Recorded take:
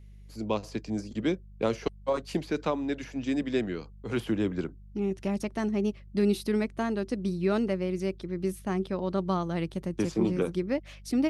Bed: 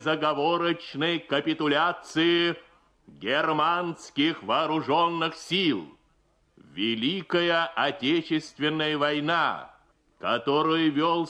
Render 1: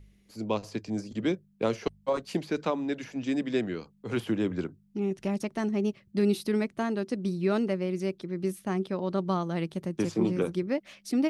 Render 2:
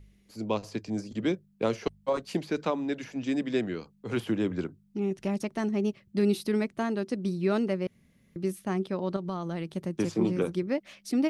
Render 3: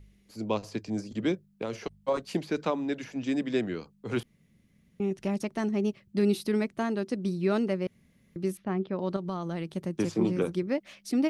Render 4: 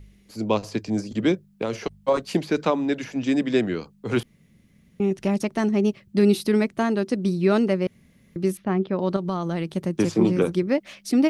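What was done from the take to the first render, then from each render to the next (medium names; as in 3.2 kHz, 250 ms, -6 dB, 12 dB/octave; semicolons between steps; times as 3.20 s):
de-hum 50 Hz, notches 3
7.87–8.36 s: room tone; 9.16–9.72 s: compression, threshold -29 dBFS
1.47–1.95 s: compression, threshold -28 dBFS; 4.23–5.00 s: room tone; 8.57–8.99 s: distance through air 290 m
trim +7 dB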